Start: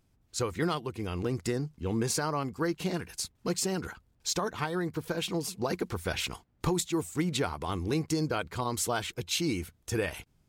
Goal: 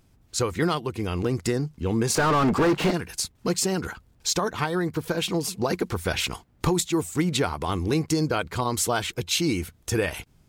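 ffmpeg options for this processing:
-filter_complex "[0:a]asplit=2[s0][s1];[s1]acompressor=threshold=0.00891:ratio=6,volume=0.75[s2];[s0][s2]amix=inputs=2:normalize=0,asettb=1/sr,asplit=3[s3][s4][s5];[s3]atrim=end=2.154[s6];[s4]atrim=start=2.15:end=2.91,asetpts=PTS-STARTPTS,afade=t=in:d=0.004:c=qsin,afade=t=out:st=0.756:d=0.004:c=qsin,asplit=2[s7][s8];[s8]highpass=f=720:p=1,volume=63.1,asoftclip=type=tanh:threshold=0.141[s9];[s7][s9]amix=inputs=2:normalize=0,lowpass=f=1100:p=1,volume=0.501[s10];[s5]atrim=start=2.906[s11];[s6][s10]acrossfade=d=0.004:c1=hsin:c2=qsin[s12];[s12][s11]acrossfade=d=0.004:c1=qsin:c2=hsin,volume=1.68"

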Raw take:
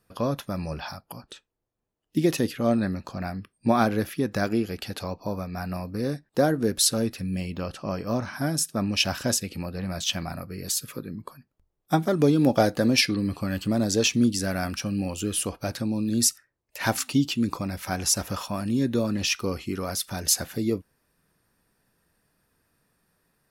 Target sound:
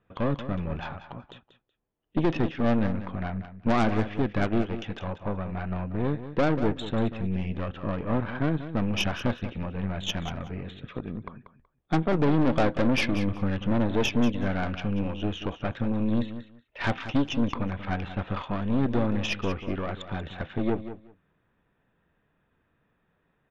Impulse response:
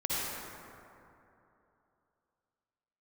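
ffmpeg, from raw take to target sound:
-af "aemphasis=mode=reproduction:type=50fm,aresample=8000,asoftclip=type=tanh:threshold=0.126,aresample=44100,aeval=exprs='0.15*(cos(1*acos(clip(val(0)/0.15,-1,1)))-cos(1*PI/2))+0.0335*(cos(4*acos(clip(val(0)/0.15,-1,1)))-cos(4*PI/2))':c=same,aecho=1:1:187|374:0.251|0.0427"

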